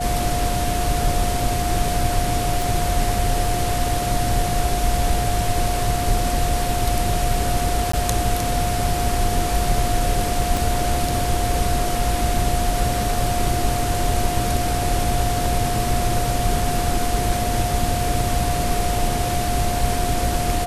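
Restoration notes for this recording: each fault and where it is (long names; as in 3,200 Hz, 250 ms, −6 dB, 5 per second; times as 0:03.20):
whistle 710 Hz −24 dBFS
0:02.62: click
0:07.92–0:07.93: drop-out 14 ms
0:10.57: click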